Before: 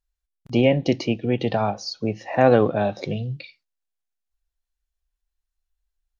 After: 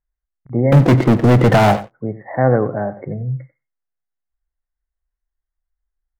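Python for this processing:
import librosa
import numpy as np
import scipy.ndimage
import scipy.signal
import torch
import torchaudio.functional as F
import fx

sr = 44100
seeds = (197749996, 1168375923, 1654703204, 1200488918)

y = fx.brickwall_lowpass(x, sr, high_hz=2200.0)
y = fx.leveller(y, sr, passes=5, at=(0.72, 1.88))
y = fx.peak_eq(y, sr, hz=130.0, db=9.0, octaves=0.26)
y = y + 10.0 ** (-16.0 / 20.0) * np.pad(y, (int(93 * sr / 1000.0), 0))[:len(y)]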